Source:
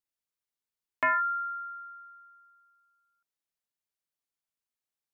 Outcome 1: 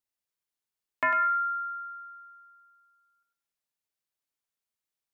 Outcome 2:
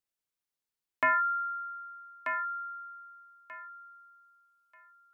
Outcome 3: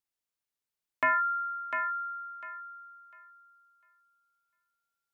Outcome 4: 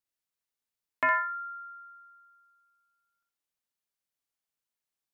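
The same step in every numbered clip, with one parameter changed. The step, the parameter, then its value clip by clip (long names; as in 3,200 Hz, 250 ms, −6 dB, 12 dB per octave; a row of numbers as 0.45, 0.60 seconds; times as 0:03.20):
feedback echo with a high-pass in the loop, delay time: 100, 1,236, 700, 63 milliseconds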